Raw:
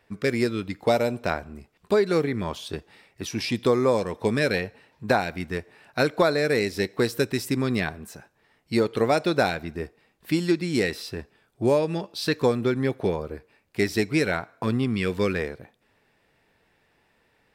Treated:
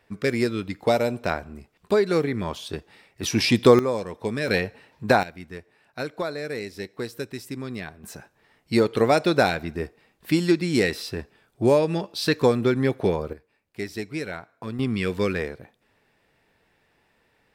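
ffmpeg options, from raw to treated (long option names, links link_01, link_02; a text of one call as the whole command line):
ffmpeg -i in.wav -af "asetnsamples=nb_out_samples=441:pad=0,asendcmd='3.23 volume volume 7dB;3.79 volume volume -4dB;4.48 volume volume 3dB;5.23 volume volume -8.5dB;8.04 volume volume 2.5dB;13.33 volume volume -8dB;14.79 volume volume 0dB',volume=0.5dB" out.wav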